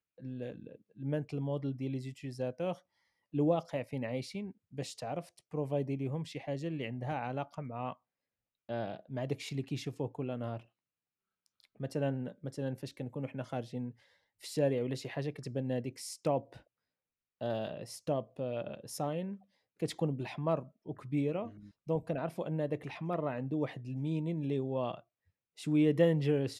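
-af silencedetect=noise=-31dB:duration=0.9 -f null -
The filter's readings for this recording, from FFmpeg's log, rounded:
silence_start: 10.56
silence_end: 11.83 | silence_duration: 1.27
silence_start: 16.38
silence_end: 17.42 | silence_duration: 1.04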